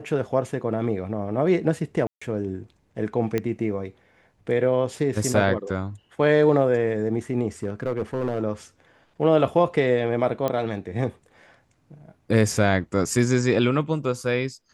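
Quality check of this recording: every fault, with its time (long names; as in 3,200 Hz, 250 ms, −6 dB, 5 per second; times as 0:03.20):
0:02.07–0:02.21: drop-out 145 ms
0:03.38: click −12 dBFS
0:07.63–0:08.43: clipping −20 dBFS
0:10.48: click −12 dBFS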